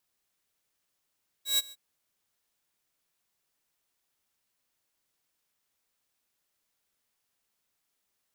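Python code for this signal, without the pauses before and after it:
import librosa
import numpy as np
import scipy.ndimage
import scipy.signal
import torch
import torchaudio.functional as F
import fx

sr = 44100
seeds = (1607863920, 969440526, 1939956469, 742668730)

y = fx.adsr_tone(sr, wave='saw', hz=3860.0, attack_ms=133.0, decay_ms=28.0, sustain_db=-23.0, held_s=0.27, release_ms=37.0, level_db=-19.0)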